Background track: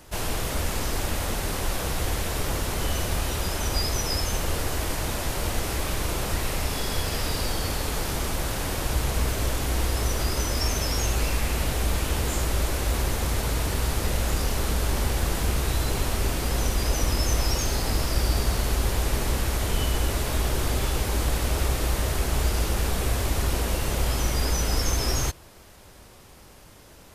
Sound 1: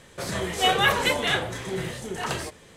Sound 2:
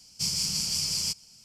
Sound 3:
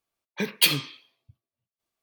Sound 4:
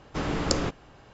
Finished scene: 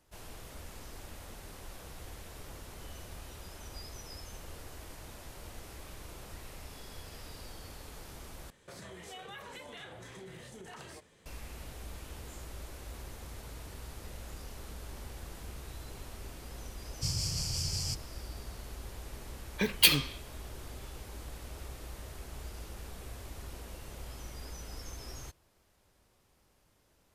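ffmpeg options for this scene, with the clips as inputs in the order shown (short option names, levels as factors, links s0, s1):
-filter_complex "[0:a]volume=0.1[s0];[1:a]acompressor=threshold=0.0282:ratio=6:attack=3.2:release=140:knee=1:detection=peak[s1];[2:a]lowshelf=f=160:t=q:w=3:g=13[s2];[s0]asplit=2[s3][s4];[s3]atrim=end=8.504[s5];[s1]atrim=end=2.76,asetpts=PTS-STARTPTS,volume=0.224[s6];[s4]atrim=start=11.256[s7];[s2]atrim=end=1.44,asetpts=PTS-STARTPTS,volume=0.398,afade=t=in:d=0.004:c=hsin,afade=t=out:st=1.436:d=0.004:c=hsin,adelay=16820[s8];[3:a]atrim=end=2.02,asetpts=PTS-STARTPTS,volume=0.794,afade=t=in:d=0.004:c=hsin,afade=t=out:st=2.016:d=0.004:c=hsin,adelay=19210[s9];[s5][s6]acrossfade=d=0.004:c1=hsin:c2=hsin[s10];[s10][s7]acrossfade=d=0.004:c1=hsin:c2=hsin[s11];[s11][s8][s9]amix=inputs=3:normalize=0"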